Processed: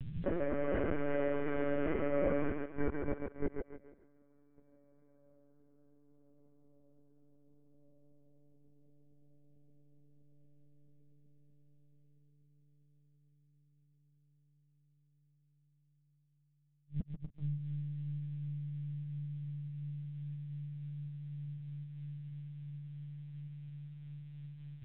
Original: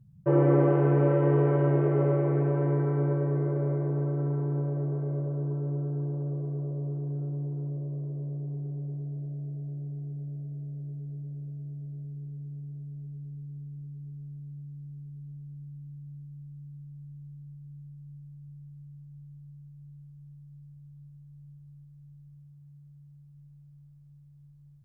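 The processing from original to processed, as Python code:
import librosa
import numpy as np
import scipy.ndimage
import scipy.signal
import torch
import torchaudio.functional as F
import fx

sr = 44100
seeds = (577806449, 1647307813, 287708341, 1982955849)

p1 = fx.over_compress(x, sr, threshold_db=-37.0, ratio=-1.0)
p2 = scipy.signal.sosfilt(scipy.signal.butter(2, 59.0, 'highpass', fs=sr, output='sos'), p1)
p3 = fx.high_shelf_res(p2, sr, hz=1500.0, db=9.0, q=1.5)
p4 = fx.gate_flip(p3, sr, shuts_db=-35.0, range_db=-36)
p5 = p4 + fx.echo_thinned(p4, sr, ms=143, feedback_pct=37, hz=150.0, wet_db=-3.5, dry=0)
p6 = fx.lpc_vocoder(p5, sr, seeds[0], excitation='pitch_kept', order=16)
p7 = fx.peak_eq(p6, sr, hz=140.0, db=-11.0, octaves=0.52)
y = F.gain(torch.from_numpy(p7), 14.5).numpy()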